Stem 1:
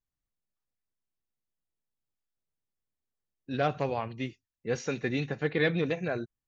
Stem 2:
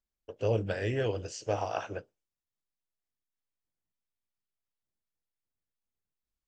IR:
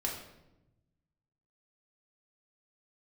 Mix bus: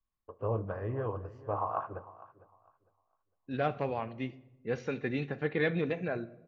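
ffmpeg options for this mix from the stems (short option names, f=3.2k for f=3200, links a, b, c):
-filter_complex "[0:a]lowpass=3k,volume=-4dB,asplit=2[a][b];[b]volume=-15dB[c];[1:a]lowpass=f=1.1k:t=q:w=11,lowshelf=f=190:g=8,volume=-9dB,asplit=3[d][e][f];[e]volume=-18dB[g];[f]volume=-17.5dB[h];[2:a]atrim=start_sample=2205[i];[c][g]amix=inputs=2:normalize=0[j];[j][i]afir=irnorm=-1:irlink=0[k];[h]aecho=0:1:454|908|1362|1816:1|0.23|0.0529|0.0122[l];[a][d][k][l]amix=inputs=4:normalize=0"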